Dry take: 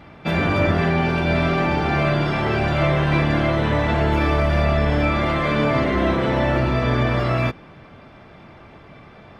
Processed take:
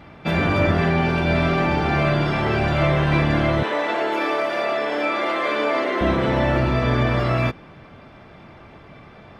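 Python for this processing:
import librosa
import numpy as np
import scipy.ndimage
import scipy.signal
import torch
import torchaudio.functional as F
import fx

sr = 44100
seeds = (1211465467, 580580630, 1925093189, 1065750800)

y = fx.highpass(x, sr, hz=320.0, slope=24, at=(3.63, 6.01))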